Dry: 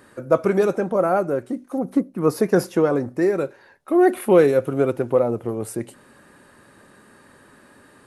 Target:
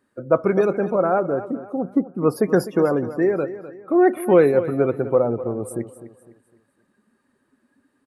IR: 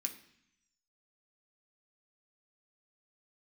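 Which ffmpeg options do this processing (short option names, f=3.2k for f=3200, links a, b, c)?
-af "afftdn=nr=20:nf=-37,aecho=1:1:253|506|759|1012:0.2|0.0738|0.0273|0.0101"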